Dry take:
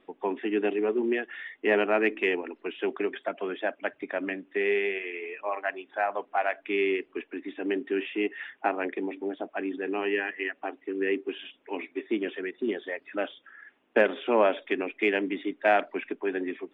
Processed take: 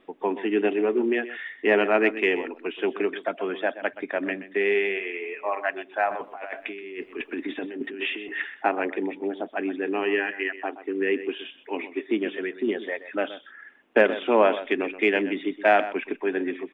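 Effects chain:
0:06.09–0:08.42: compressor whose output falls as the input rises −37 dBFS, ratio −1
single-tap delay 126 ms −14 dB
level +3.5 dB

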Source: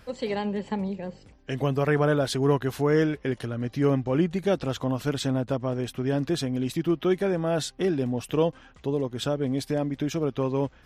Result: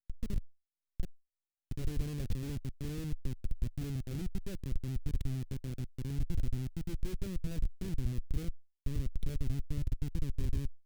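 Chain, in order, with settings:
0:00.44–0:01.71: compressor whose output falls as the input rises −34 dBFS, ratio −1
comparator with hysteresis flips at −23 dBFS
guitar amp tone stack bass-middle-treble 10-0-1
level +6.5 dB

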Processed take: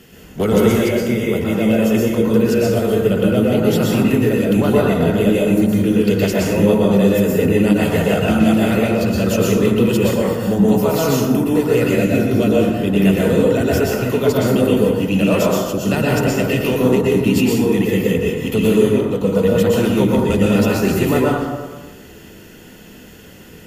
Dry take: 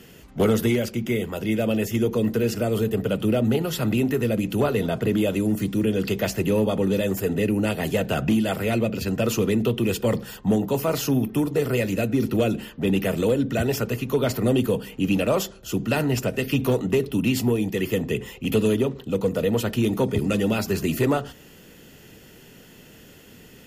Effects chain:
dense smooth reverb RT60 1.3 s, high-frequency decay 0.45×, pre-delay 105 ms, DRR −4.5 dB
level +1.5 dB

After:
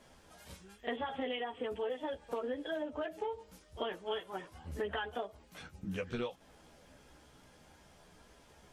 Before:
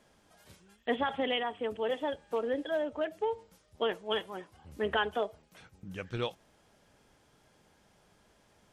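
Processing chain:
backwards echo 43 ms −21 dB
multi-voice chorus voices 6, 0.65 Hz, delay 14 ms, depth 2.3 ms
downward compressor 8 to 1, threshold −42 dBFS, peak gain reduction 14.5 dB
level +7.5 dB

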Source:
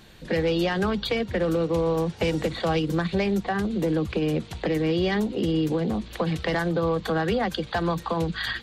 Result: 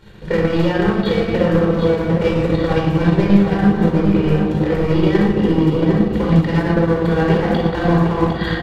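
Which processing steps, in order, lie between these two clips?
high-shelf EQ 3,300 Hz −11 dB
gain into a clipping stage and back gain 22 dB
rectangular room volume 2,100 cubic metres, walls mixed, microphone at 4.6 metres
transient designer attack +6 dB, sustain −6 dB
on a send: single-tap delay 755 ms −7 dB

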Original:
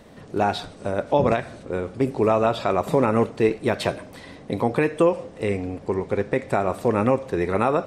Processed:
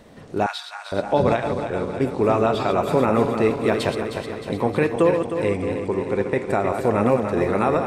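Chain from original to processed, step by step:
feedback delay that plays each chunk backwards 155 ms, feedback 75%, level −7 dB
0:00.46–0:00.92: inverse Chebyshev high-pass filter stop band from 230 Hz, stop band 70 dB

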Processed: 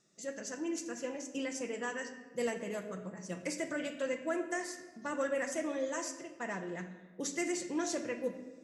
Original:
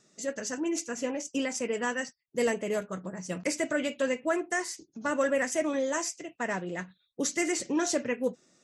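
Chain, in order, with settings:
rectangular room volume 1,300 cubic metres, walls mixed, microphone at 0.8 metres
level −8 dB

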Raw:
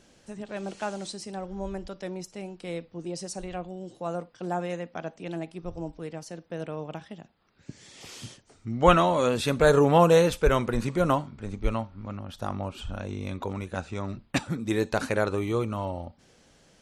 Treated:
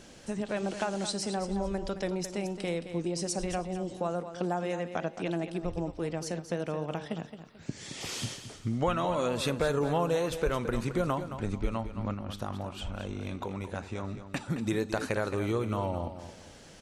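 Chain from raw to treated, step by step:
downward compressor 4 to 1, threshold −36 dBFS, peak gain reduction 19.5 dB
0:12.14–0:14.41: flanger 1.6 Hz, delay 5.5 ms, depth 8.8 ms, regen −88%
repeating echo 219 ms, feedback 30%, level −10.5 dB
level +7 dB

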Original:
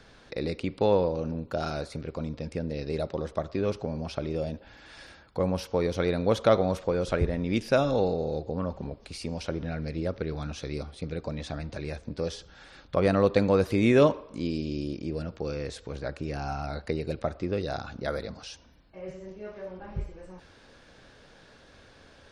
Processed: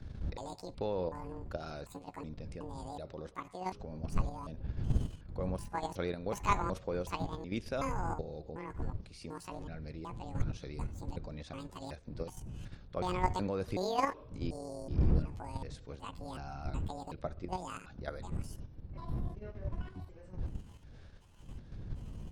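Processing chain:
pitch shifter gated in a rhythm +10.5 semitones, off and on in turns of 372 ms
wind on the microphone 100 Hz −29 dBFS
output level in coarse steps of 9 dB
level −7 dB

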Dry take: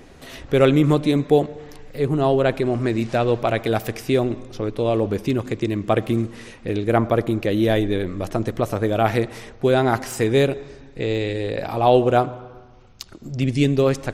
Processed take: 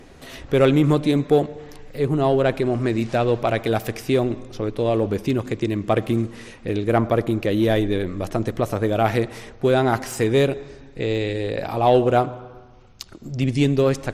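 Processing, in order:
in parallel at −10 dB: hard clipping −14 dBFS, distortion −13 dB
on the sum: floating-point word with a short mantissa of 8 bits
level −2.5 dB
Ogg Vorbis 128 kbit/s 32,000 Hz

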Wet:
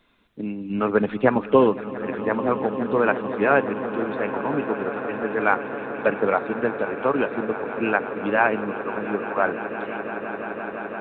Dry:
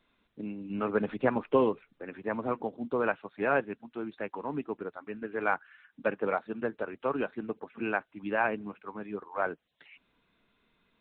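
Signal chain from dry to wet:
echo that builds up and dies away 171 ms, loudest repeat 8, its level −17 dB
level +8.5 dB

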